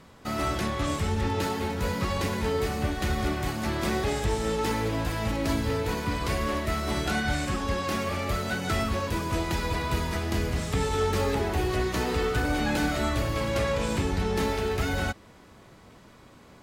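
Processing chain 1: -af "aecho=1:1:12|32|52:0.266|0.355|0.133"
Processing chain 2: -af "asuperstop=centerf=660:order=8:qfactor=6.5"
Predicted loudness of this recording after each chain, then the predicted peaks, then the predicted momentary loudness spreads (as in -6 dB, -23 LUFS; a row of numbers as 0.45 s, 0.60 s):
-27.0 LUFS, -28.5 LUFS; -13.5 dBFS, -14.0 dBFS; 3 LU, 3 LU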